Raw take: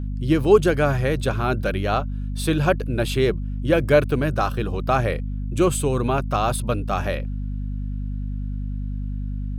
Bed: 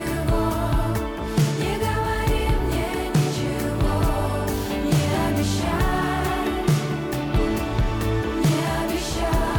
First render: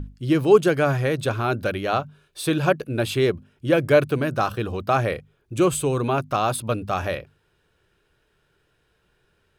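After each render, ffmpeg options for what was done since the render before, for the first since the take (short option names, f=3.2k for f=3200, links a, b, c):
-af "bandreject=f=50:t=h:w=6,bandreject=f=100:t=h:w=6,bandreject=f=150:t=h:w=6,bandreject=f=200:t=h:w=6,bandreject=f=250:t=h:w=6"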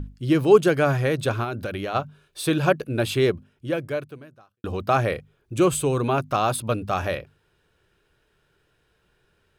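-filter_complex "[0:a]asplit=3[a][b][c];[a]afade=t=out:st=1.43:d=0.02[d];[b]acompressor=threshold=-25dB:ratio=6:attack=3.2:release=140:knee=1:detection=peak,afade=t=in:st=1.43:d=0.02,afade=t=out:st=1.94:d=0.02[e];[c]afade=t=in:st=1.94:d=0.02[f];[d][e][f]amix=inputs=3:normalize=0,asplit=2[g][h];[g]atrim=end=4.64,asetpts=PTS-STARTPTS,afade=t=out:st=3.29:d=1.35:c=qua[i];[h]atrim=start=4.64,asetpts=PTS-STARTPTS,afade=t=in:d=0.004:c=hsin[j];[i][j]concat=n=2:v=0:a=1"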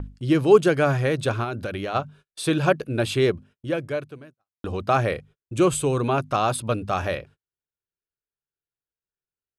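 -af "lowpass=f=11k:w=0.5412,lowpass=f=11k:w=1.3066,agate=range=-35dB:threshold=-46dB:ratio=16:detection=peak"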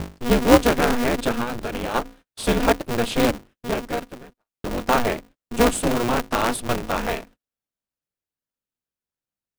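-filter_complex "[0:a]asplit=2[a][b];[b]acrusher=samples=34:mix=1:aa=0.000001:lfo=1:lforange=34:lforate=0.36,volume=-10.5dB[c];[a][c]amix=inputs=2:normalize=0,aeval=exprs='val(0)*sgn(sin(2*PI*120*n/s))':c=same"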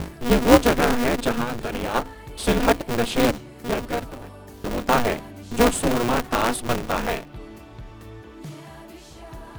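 -filter_complex "[1:a]volume=-18dB[a];[0:a][a]amix=inputs=2:normalize=0"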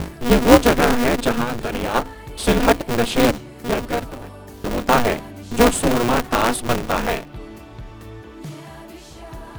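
-af "volume=3.5dB,alimiter=limit=-1dB:level=0:latency=1"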